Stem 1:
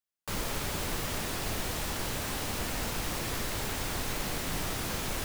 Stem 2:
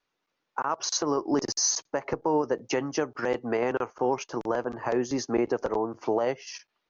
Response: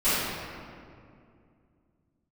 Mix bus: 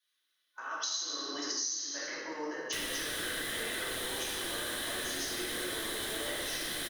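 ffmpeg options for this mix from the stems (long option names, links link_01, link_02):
-filter_complex "[0:a]lowshelf=frequency=210:gain=-11.5,adelay=2450,volume=-3.5dB[link_01];[1:a]aderivative,volume=-5dB,asplit=2[link_02][link_03];[link_03]volume=-3dB[link_04];[2:a]atrim=start_sample=2205[link_05];[link_04][link_05]afir=irnorm=-1:irlink=0[link_06];[link_01][link_02][link_06]amix=inputs=3:normalize=0,superequalizer=6b=1.78:9b=0.562:11b=2.24:13b=3.16:16b=2.51,acompressor=threshold=-32dB:ratio=12"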